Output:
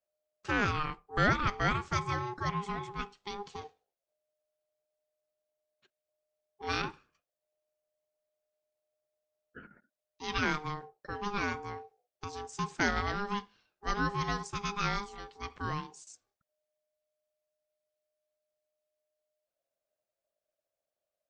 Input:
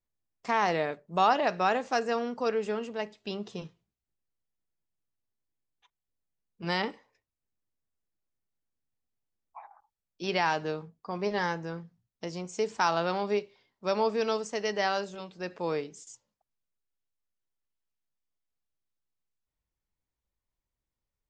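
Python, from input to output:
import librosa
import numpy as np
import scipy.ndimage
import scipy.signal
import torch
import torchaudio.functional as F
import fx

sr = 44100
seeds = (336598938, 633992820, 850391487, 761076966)

y = fx.peak_eq(x, sr, hz=370.0, db=-9.0, octaves=0.31)
y = y * np.sin(2.0 * np.pi * 610.0 * np.arange(len(y)) / sr)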